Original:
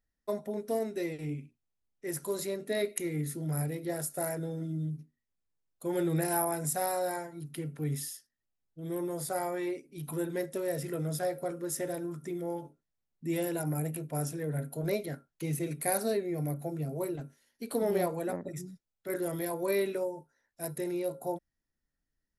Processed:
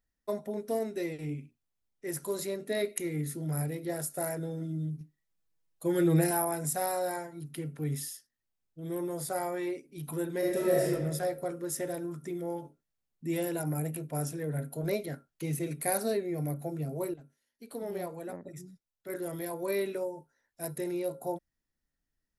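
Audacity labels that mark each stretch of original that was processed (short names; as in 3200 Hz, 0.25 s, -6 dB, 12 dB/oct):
5.000000	6.310000	comb 6.2 ms, depth 93%
10.380000	10.870000	reverb throw, RT60 1.2 s, DRR -5 dB
17.140000	20.650000	fade in, from -12.5 dB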